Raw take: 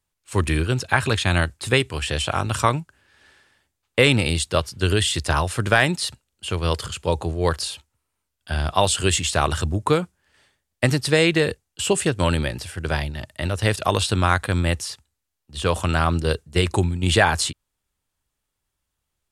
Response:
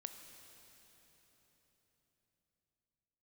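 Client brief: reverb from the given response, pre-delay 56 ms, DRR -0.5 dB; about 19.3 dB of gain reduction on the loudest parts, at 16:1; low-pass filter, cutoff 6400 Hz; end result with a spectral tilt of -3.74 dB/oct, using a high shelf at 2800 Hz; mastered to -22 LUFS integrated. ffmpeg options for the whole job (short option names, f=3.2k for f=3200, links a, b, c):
-filter_complex "[0:a]lowpass=6.4k,highshelf=f=2.8k:g=6.5,acompressor=threshold=-30dB:ratio=16,asplit=2[a][b];[1:a]atrim=start_sample=2205,adelay=56[c];[b][c]afir=irnorm=-1:irlink=0,volume=4.5dB[d];[a][d]amix=inputs=2:normalize=0,volume=10dB"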